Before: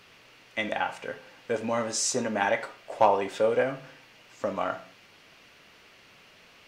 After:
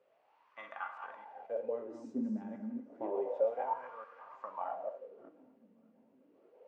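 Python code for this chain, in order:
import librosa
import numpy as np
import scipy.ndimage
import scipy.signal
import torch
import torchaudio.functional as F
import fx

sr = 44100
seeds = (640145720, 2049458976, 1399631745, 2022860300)

p1 = fx.reverse_delay(x, sr, ms=311, wet_db=-5.5)
p2 = p1 + fx.echo_tape(p1, sr, ms=589, feedback_pct=76, wet_db=-18.0, lp_hz=4700.0, drive_db=12.0, wow_cents=19, dry=0)
p3 = fx.rev_gated(p2, sr, seeds[0], gate_ms=290, shape='flat', drr_db=9.5)
y = fx.wah_lfo(p3, sr, hz=0.3, low_hz=220.0, high_hz=1200.0, q=7.9)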